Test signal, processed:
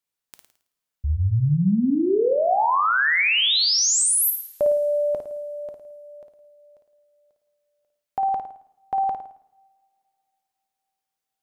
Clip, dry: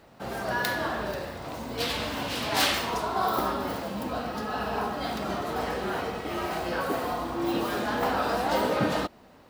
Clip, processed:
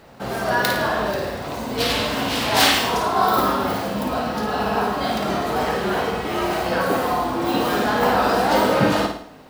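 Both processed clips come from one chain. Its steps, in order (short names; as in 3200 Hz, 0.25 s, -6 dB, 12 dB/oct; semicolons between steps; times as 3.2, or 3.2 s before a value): flutter echo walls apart 9.3 m, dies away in 0.51 s; two-slope reverb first 0.59 s, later 3.1 s, from -26 dB, DRR 12 dB; gain +7 dB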